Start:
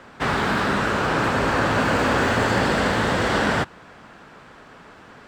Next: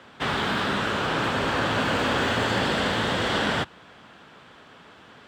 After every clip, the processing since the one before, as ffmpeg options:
-af "highpass=61,equalizer=f=3.3k:w=2.4:g=8.5,volume=-4.5dB"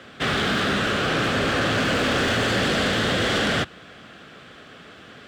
-af "equalizer=f=930:t=o:w=0.29:g=-15,aeval=exprs='0.211*sin(PI/2*2*val(0)/0.211)':c=same,volume=-4dB"

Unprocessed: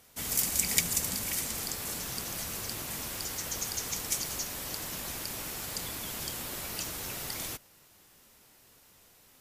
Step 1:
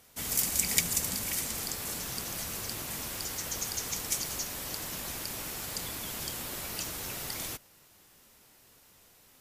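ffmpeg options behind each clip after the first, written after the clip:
-af anull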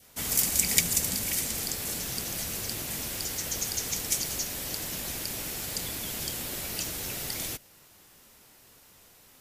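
-af "adynamicequalizer=threshold=0.00141:dfrequency=1100:dqfactor=1.5:tfrequency=1100:tqfactor=1.5:attack=5:release=100:ratio=0.375:range=3:mode=cutabove:tftype=bell,volume=3.5dB"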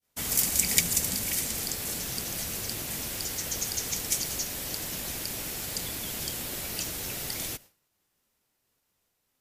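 -af "agate=range=-33dB:threshold=-43dB:ratio=3:detection=peak"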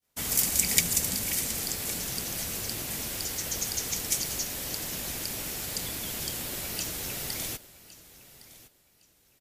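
-af "aecho=1:1:1111|2222:0.126|0.0315"

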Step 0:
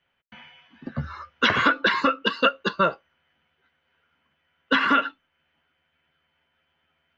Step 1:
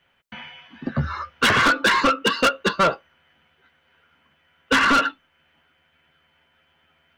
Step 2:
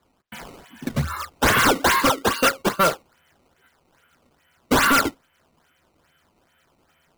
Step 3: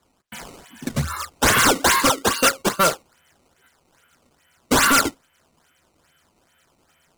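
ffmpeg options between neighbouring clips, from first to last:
-af "asoftclip=type=tanh:threshold=-21.5dB,volume=8.5dB"
-af "acrusher=samples=15:mix=1:aa=0.000001:lfo=1:lforange=24:lforate=2.4"
-af "equalizer=f=7.9k:t=o:w=1.5:g=7.5"

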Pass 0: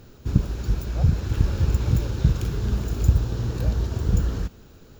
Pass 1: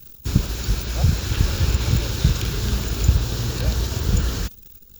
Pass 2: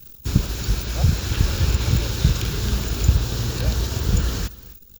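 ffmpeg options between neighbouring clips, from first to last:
-filter_complex "[0:a]crystalizer=i=8.5:c=0,anlmdn=1.58,acrossover=split=4800[a][b];[b]acompressor=threshold=-34dB:ratio=4:attack=1:release=60[c];[a][c]amix=inputs=2:normalize=0,volume=1dB"
-af "aecho=1:1:263:0.1"

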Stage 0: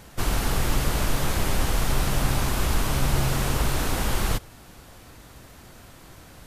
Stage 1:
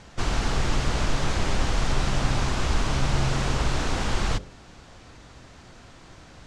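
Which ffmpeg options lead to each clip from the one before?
-af "lowpass=f=7.1k:w=0.5412,lowpass=f=7.1k:w=1.3066,bandreject=f=46.89:t=h:w=4,bandreject=f=93.78:t=h:w=4,bandreject=f=140.67:t=h:w=4,bandreject=f=187.56:t=h:w=4,bandreject=f=234.45:t=h:w=4,bandreject=f=281.34:t=h:w=4,bandreject=f=328.23:t=h:w=4,bandreject=f=375.12:t=h:w=4,bandreject=f=422.01:t=h:w=4,bandreject=f=468.9:t=h:w=4,bandreject=f=515.79:t=h:w=4,bandreject=f=562.68:t=h:w=4,bandreject=f=609.57:t=h:w=4"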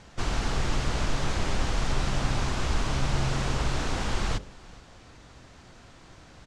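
-af "aecho=1:1:420:0.0668,volume=-3dB"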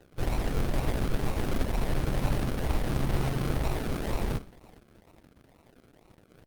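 -af "acrusher=samples=38:mix=1:aa=0.000001:lfo=1:lforange=22.8:lforate=2.1,aeval=exprs='sgn(val(0))*max(abs(val(0))-0.00224,0)':c=same" -ar 48000 -c:a libopus -b:a 20k

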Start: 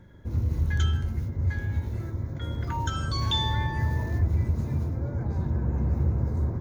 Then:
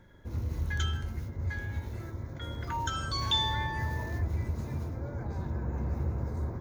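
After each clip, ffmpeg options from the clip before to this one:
-af "equalizer=f=120:w=0.35:g=-8"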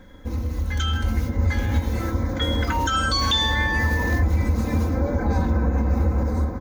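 -af "aecho=1:1:3.9:0.89,alimiter=level_in=3.5dB:limit=-24dB:level=0:latency=1:release=306,volume=-3.5dB,dynaudnorm=f=570:g=3:m=6.5dB,volume=9dB"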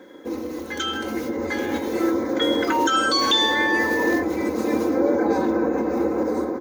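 -af "highpass=f=360:t=q:w=4.1,volume=2dB"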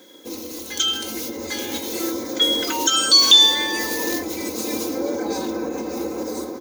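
-af "aexciter=amount=6.8:drive=3.3:freq=2.6k,volume=-5dB"

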